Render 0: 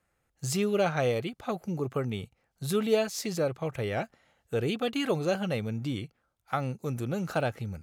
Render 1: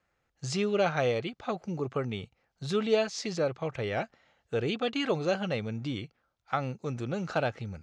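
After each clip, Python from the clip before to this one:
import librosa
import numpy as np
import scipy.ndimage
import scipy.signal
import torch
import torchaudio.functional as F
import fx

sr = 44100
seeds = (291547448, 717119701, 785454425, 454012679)

y = scipy.signal.sosfilt(scipy.signal.butter(4, 6200.0, 'lowpass', fs=sr, output='sos'), x)
y = fx.low_shelf(y, sr, hz=350.0, db=-4.0)
y = F.gain(torch.from_numpy(y), 1.0).numpy()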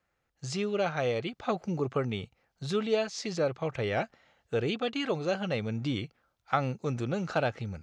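y = fx.rider(x, sr, range_db=3, speed_s=0.5)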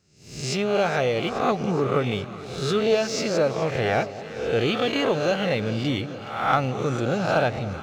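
y = fx.spec_swells(x, sr, rise_s=0.76)
y = fx.leveller(y, sr, passes=1)
y = fx.echo_alternate(y, sr, ms=210, hz=880.0, feedback_pct=84, wet_db=-14)
y = F.gain(torch.from_numpy(y), 1.5).numpy()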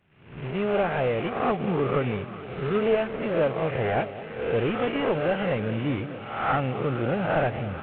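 y = fx.cvsd(x, sr, bps=16000)
y = F.gain(torch.from_numpy(y), -1.0).numpy()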